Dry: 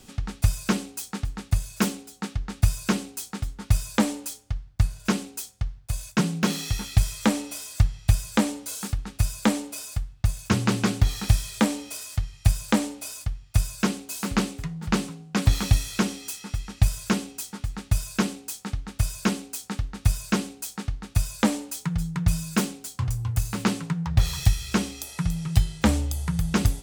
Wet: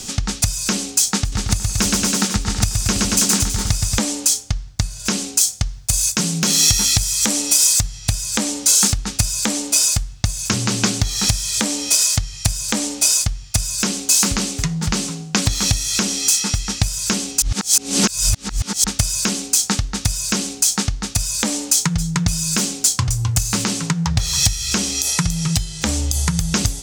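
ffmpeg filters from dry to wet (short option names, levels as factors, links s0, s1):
-filter_complex "[0:a]asettb=1/sr,asplit=3[s0][s1][s2];[s0]atrim=end=1.204[s3];[s1]atrim=start=1.2:end=3.99,asetpts=PTS-STARTPTS,afade=t=in:d=0.004:c=qsin,afade=t=out:st=2.786:d=0.004:c=qsin,aecho=1:1:120|228|325.2|412.7|491.4:0.631|0.398|0.251|0.158|0.1,atrim=end_sample=123039[s4];[s2]atrim=start=3.986[s5];[s3][s4]acrossfade=d=0.004:c1=hsin:c2=qsin[s6];[s6][s5]acrossfade=d=0.004:c1=qsin:c2=hsin,asettb=1/sr,asplit=3[s7][s8][s9];[s7]atrim=end=5.414[s10];[s8]atrim=start=5.41:end=7.99,asetpts=PTS-STARTPTS,afade=t=in:d=0.004:c=qsin,afade=t=out:st=2.576:d=0.004:c=qsin,highshelf=f=7600:g=7.5[s11];[s9]atrim=start=7.986[s12];[s10][s11]acrossfade=d=0.004:c1=hsin:c2=qsin[s13];[s13][s12]acrossfade=d=0.004:c1=qsin:c2=hsin,asplit=3[s14][s15][s16];[s14]atrim=end=17.422[s17];[s15]atrim=start=17.418:end=18.842,asetpts=PTS-STARTPTS,areverse[s18];[s16]atrim=start=18.838[s19];[s17][s18]acrossfade=d=0.004:c1=hsin:c2=hsin[s20];[s20][s19]acrossfade=d=0.004:c1=hsin:c2=hsin,acompressor=threshold=0.0355:ratio=6,equalizer=f=6200:w=0.85:g=14,alimiter=level_in=4.73:limit=0.891:release=50:level=0:latency=1,volume=0.891"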